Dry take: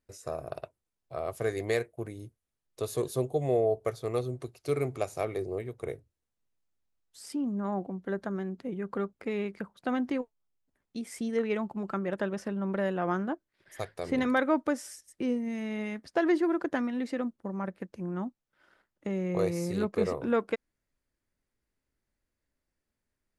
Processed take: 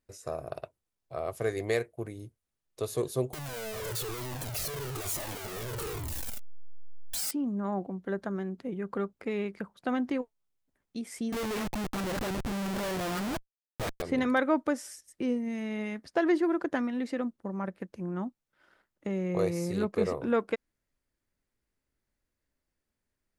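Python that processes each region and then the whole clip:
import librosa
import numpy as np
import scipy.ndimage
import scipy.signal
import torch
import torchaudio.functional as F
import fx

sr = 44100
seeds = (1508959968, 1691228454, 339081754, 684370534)

y = fx.chain(x, sr, fx.clip_1bit(),
    fx.high_shelf(hz=9000.0, db=10.0),
    fx.comb_cascade(direction='falling', hz=1.1), at=(3.33, 7.31))
y = fx.chain(y, sr, fx.dispersion(late='highs', ms=61.0, hz=920.0),
    fx.schmitt(flips_db=-39.0), at=(11.32, 14.02))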